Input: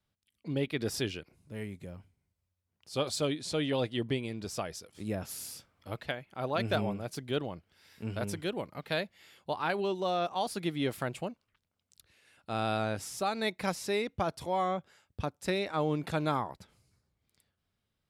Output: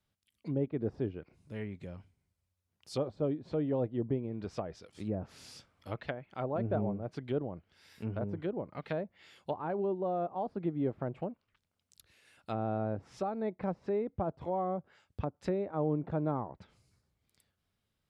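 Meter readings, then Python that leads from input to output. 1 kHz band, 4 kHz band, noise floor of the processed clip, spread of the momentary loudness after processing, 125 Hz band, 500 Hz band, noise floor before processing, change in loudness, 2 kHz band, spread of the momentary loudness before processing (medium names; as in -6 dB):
-4.5 dB, -17.0 dB, -83 dBFS, 13 LU, 0.0 dB, -1.0 dB, -83 dBFS, -2.0 dB, -12.0 dB, 12 LU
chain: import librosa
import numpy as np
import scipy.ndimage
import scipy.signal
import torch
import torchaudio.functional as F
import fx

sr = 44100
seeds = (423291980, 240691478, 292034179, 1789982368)

y = fx.env_lowpass_down(x, sr, base_hz=710.0, full_db=-31.0)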